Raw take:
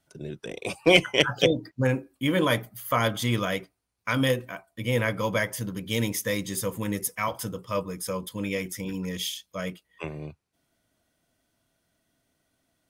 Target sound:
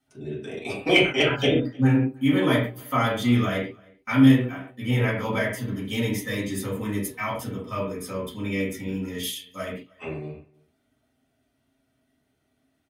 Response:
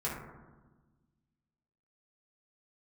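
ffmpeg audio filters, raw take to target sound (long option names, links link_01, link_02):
-filter_complex "[0:a]asettb=1/sr,asplit=3[link_01][link_02][link_03];[link_01]atrim=end=9.234[link_04];[link_02]atrim=start=9.23:end=9.65,asetpts=PTS-STARTPTS,afade=type=in:duration=0.004:curve=qsin,afade=type=out:start_time=0.416:duration=0.004:curve=qsin,equalizer=frequency=11000:width=1.2:gain=14.5[link_05];[link_03]atrim=start=9.646[link_06];[link_04][link_05]acrossfade=duration=0.004:curve1=hsin:curve2=qsin[link_07];[link_07][link_06]acrossfade=duration=0.004:curve1=qsin:curve2=hsin,asplit=2[link_08][link_09];[link_09]adelay=309,volume=-26dB,highshelf=frequency=4000:gain=-6.95[link_10];[link_08][link_10]amix=inputs=2:normalize=0[link_11];[1:a]atrim=start_sample=2205,afade=type=out:start_time=0.31:duration=0.01,atrim=end_sample=14112,asetrate=79380,aresample=44100[link_12];[link_11][link_12]afir=irnorm=-1:irlink=0"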